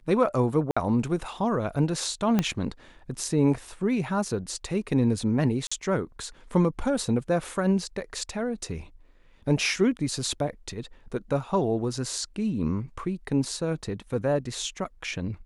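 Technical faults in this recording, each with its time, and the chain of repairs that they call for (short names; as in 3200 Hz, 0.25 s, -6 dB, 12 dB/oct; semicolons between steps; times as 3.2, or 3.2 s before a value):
0.71–0.77 gap 55 ms
2.39 pop -10 dBFS
5.67–5.71 gap 45 ms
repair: de-click; interpolate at 0.71, 55 ms; interpolate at 5.67, 45 ms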